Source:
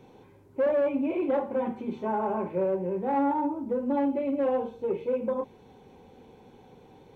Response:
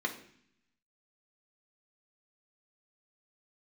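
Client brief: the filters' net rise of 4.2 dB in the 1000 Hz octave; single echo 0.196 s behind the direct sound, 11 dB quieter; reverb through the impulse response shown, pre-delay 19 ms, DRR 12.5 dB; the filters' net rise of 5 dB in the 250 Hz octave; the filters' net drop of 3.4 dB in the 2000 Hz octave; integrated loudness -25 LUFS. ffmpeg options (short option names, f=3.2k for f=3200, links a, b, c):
-filter_complex "[0:a]equalizer=f=250:t=o:g=5.5,equalizer=f=1k:t=o:g=6,equalizer=f=2k:t=o:g=-7.5,aecho=1:1:196:0.282,asplit=2[a][b];[1:a]atrim=start_sample=2205,adelay=19[c];[b][c]afir=irnorm=-1:irlink=0,volume=-18dB[d];[a][d]amix=inputs=2:normalize=0"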